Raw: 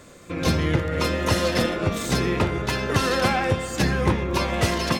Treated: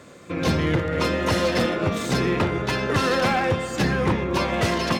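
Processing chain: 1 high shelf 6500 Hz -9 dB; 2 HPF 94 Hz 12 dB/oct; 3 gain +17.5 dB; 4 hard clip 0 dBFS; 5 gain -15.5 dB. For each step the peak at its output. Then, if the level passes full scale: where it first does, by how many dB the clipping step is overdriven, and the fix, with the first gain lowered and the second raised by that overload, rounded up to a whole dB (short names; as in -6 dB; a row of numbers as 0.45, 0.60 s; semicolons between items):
-7.0, -8.0, +9.5, 0.0, -15.5 dBFS; step 3, 9.5 dB; step 3 +7.5 dB, step 5 -5.5 dB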